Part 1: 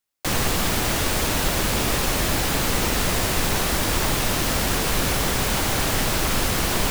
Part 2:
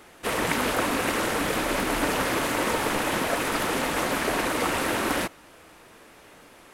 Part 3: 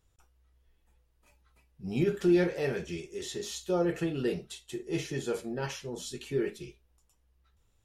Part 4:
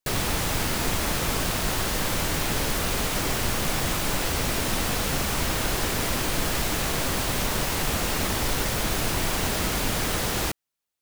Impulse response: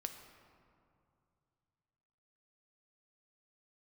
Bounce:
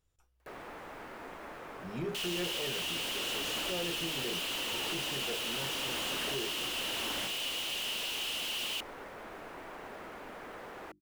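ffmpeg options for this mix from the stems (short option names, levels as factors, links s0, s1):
-filter_complex "[0:a]highpass=f=2900:t=q:w=7.8,adelay=1900,volume=0.178[s0];[1:a]acompressor=threshold=0.0224:ratio=6,adelay=2000,volume=1.06[s1];[2:a]volume=0.501,asplit=2[s2][s3];[3:a]acrossover=split=260 2200:gain=0.126 1 0.0891[s4][s5][s6];[s4][s5][s6]amix=inputs=3:normalize=0,acompressor=mode=upward:threshold=0.01:ratio=2.5,adelay=400,volume=0.2[s7];[s3]apad=whole_len=385175[s8];[s1][s8]sidechaincompress=threshold=0.0112:ratio=8:attack=16:release=1440[s9];[s0][s9][s2][s7]amix=inputs=4:normalize=0,bandreject=f=50:t=h:w=6,bandreject=f=100:t=h:w=6,bandreject=f=150:t=h:w=6,bandreject=f=200:t=h:w=6,bandreject=f=250:t=h:w=6,bandreject=f=300:t=h:w=6,bandreject=f=350:t=h:w=6,asoftclip=type=tanh:threshold=0.0316"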